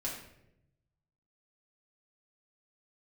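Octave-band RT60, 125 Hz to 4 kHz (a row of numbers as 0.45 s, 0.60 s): 1.5 s, 1.1 s, 1.0 s, 0.65 s, 0.70 s, 0.55 s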